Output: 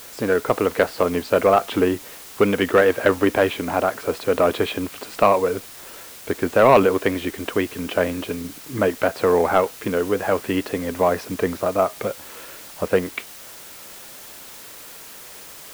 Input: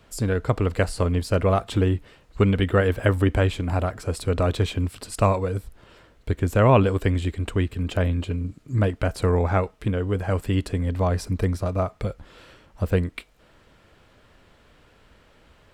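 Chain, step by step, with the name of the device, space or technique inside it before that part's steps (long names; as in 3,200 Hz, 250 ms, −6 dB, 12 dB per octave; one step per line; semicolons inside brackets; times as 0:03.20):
tape answering machine (band-pass filter 330–2,800 Hz; soft clipping −13 dBFS, distortion −16 dB; tape wow and flutter; white noise bed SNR 19 dB)
level +8.5 dB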